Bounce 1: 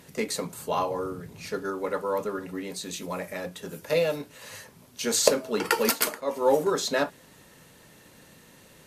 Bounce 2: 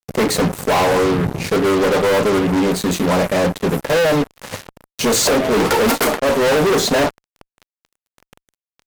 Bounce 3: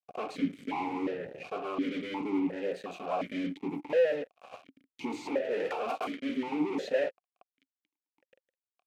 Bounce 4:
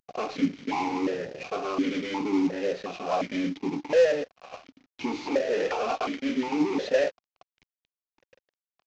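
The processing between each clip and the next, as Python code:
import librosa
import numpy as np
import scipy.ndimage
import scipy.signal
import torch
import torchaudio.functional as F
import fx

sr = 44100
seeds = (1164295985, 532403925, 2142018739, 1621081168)

y1 = fx.tilt_shelf(x, sr, db=7.0, hz=1400.0)
y1 = fx.small_body(y1, sr, hz=(750.0, 2100.0), ring_ms=60, db=7)
y1 = fx.fuzz(y1, sr, gain_db=36.0, gate_db=-40.0)
y2 = fx.vowel_held(y1, sr, hz=2.8)
y2 = F.gain(torch.from_numpy(y2), -5.5).numpy()
y3 = fx.cvsd(y2, sr, bps=32000)
y3 = F.gain(torch.from_numpy(y3), 5.5).numpy()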